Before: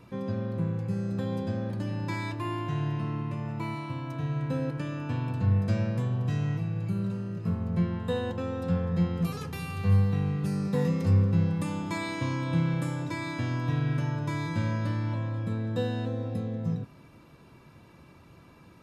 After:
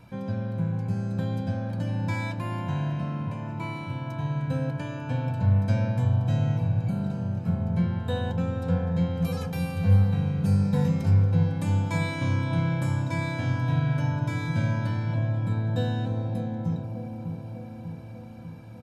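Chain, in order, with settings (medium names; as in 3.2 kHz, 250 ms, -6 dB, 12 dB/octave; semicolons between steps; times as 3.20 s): comb 1.3 ms, depth 53%; bucket-brigade echo 596 ms, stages 4096, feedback 65%, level -6 dB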